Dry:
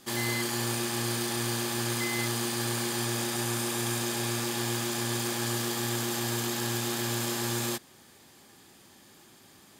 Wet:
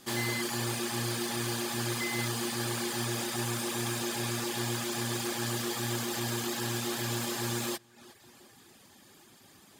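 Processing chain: tape echo 0.361 s, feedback 49%, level -18.5 dB, low-pass 5900 Hz; reverb removal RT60 0.68 s; slew limiter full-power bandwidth 140 Hz

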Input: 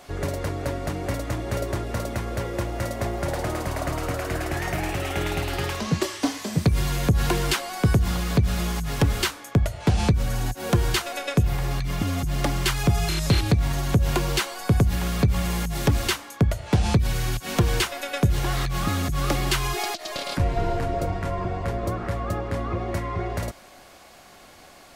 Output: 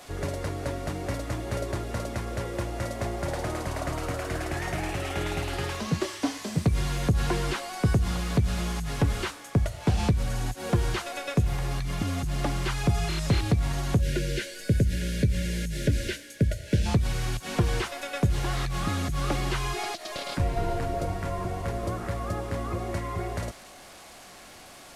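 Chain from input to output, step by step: delta modulation 64 kbps, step -38 dBFS; spectral gain 14.01–16.86, 650–1400 Hz -23 dB; gain -3.5 dB

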